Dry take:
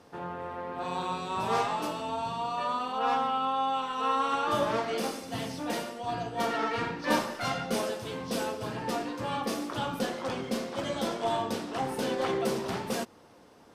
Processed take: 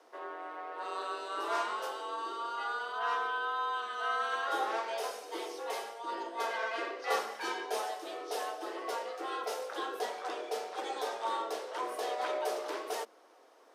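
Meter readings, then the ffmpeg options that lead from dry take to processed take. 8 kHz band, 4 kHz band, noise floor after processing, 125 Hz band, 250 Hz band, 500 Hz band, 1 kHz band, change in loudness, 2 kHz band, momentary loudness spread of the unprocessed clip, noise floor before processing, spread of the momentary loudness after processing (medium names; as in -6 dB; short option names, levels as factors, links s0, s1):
-5.0 dB, -5.0 dB, -60 dBFS, under -40 dB, -15.0 dB, -5.0 dB, -4.5 dB, -5.0 dB, -0.5 dB, 7 LU, -55 dBFS, 7 LU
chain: -af "afreqshift=220,lowshelf=f=200:g=6,volume=0.531"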